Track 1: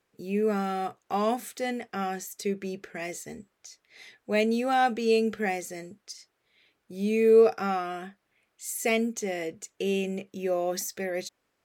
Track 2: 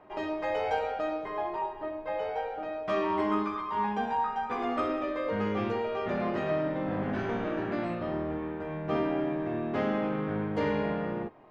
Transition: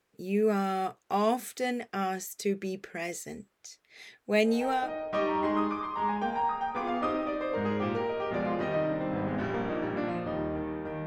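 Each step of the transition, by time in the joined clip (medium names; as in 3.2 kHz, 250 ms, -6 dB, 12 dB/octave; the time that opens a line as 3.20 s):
track 1
4.67 s: go over to track 2 from 2.42 s, crossfade 0.52 s equal-power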